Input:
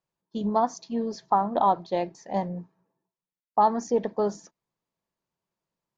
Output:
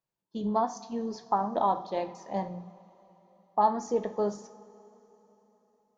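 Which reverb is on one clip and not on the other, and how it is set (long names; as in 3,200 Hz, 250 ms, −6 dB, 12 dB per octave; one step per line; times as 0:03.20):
coupled-rooms reverb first 0.48 s, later 3.9 s, from −18 dB, DRR 8 dB
level −4.5 dB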